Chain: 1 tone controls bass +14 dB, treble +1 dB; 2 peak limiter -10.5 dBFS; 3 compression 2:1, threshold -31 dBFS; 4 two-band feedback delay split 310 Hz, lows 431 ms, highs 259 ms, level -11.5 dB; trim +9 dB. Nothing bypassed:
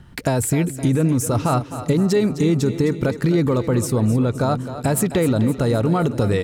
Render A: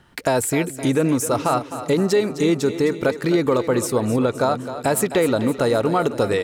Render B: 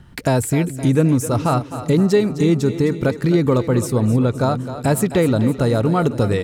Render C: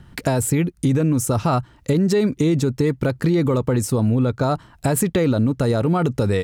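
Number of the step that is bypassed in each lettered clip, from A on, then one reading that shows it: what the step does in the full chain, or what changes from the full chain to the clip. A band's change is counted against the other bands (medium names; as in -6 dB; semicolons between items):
1, 125 Hz band -10.5 dB; 2, mean gain reduction 2.5 dB; 4, echo-to-direct -10.0 dB to none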